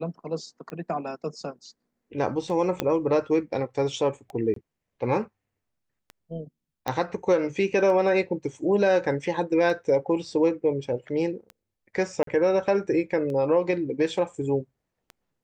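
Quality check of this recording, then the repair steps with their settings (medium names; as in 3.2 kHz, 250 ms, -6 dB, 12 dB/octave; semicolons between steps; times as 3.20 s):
tick 33 1/3 rpm -25 dBFS
2.80 s: pop -10 dBFS
4.54–4.56 s: dropout 23 ms
6.88 s: pop -14 dBFS
12.23–12.27 s: dropout 43 ms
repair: de-click; interpolate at 4.54 s, 23 ms; interpolate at 12.23 s, 43 ms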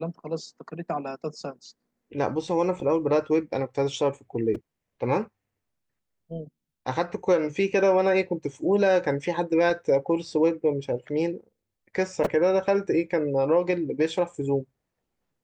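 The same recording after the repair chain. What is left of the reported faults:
2.80 s: pop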